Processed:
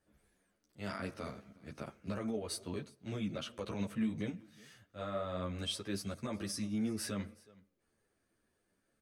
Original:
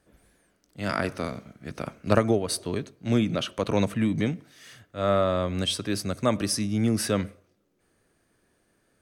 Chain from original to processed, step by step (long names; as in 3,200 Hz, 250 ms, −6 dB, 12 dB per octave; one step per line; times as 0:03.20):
brickwall limiter −17.5 dBFS, peak gain reduction 11 dB
single-tap delay 370 ms −24 dB
string-ensemble chorus
level −8 dB